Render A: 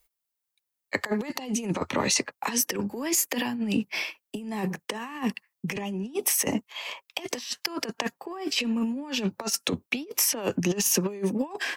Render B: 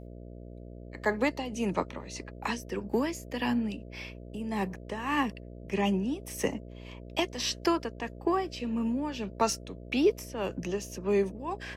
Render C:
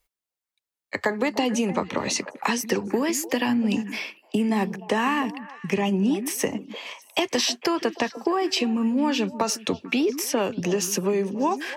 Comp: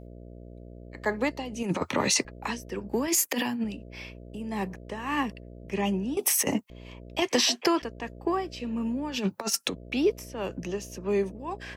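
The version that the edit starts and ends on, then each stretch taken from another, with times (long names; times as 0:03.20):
B
0:01.63–0:02.25: punch in from A
0:03.08–0:03.64: punch in from A
0:06.17–0:06.70: punch in from A
0:07.22–0:07.82: punch in from C
0:09.16–0:09.71: punch in from A, crossfade 0.10 s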